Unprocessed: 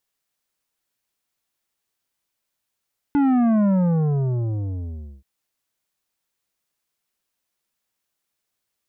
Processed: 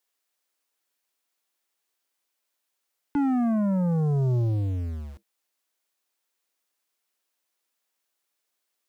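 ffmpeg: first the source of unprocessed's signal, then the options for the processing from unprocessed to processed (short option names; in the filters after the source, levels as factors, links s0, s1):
-f lavfi -i "aevalsrc='0.158*clip((2.08-t)/1.59,0,1)*tanh(3.16*sin(2*PI*290*2.08/log(65/290)*(exp(log(65/290)*t/2.08)-1)))/tanh(3.16)':d=2.08:s=44100"
-filter_complex "[0:a]acrossover=split=230|560[s0][s1][s2];[s0]aeval=exprs='val(0)*gte(abs(val(0)),0.00631)':c=same[s3];[s3][s1][s2]amix=inputs=3:normalize=0,alimiter=limit=0.112:level=0:latency=1"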